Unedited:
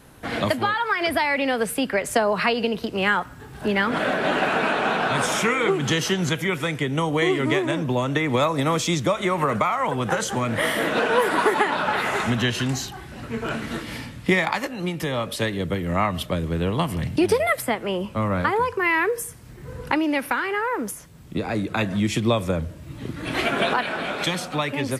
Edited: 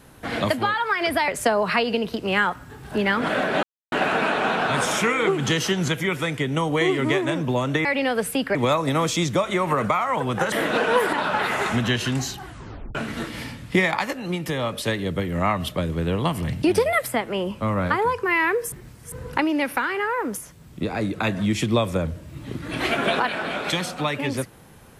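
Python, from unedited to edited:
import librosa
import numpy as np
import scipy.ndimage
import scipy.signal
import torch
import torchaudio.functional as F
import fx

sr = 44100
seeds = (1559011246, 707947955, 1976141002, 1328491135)

y = fx.edit(x, sr, fx.move(start_s=1.28, length_s=0.7, to_s=8.26),
    fx.insert_silence(at_s=4.33, length_s=0.29),
    fx.cut(start_s=10.23, length_s=0.51),
    fx.cut(start_s=11.35, length_s=0.32),
    fx.tape_stop(start_s=12.99, length_s=0.5),
    fx.reverse_span(start_s=19.26, length_s=0.4), tone=tone)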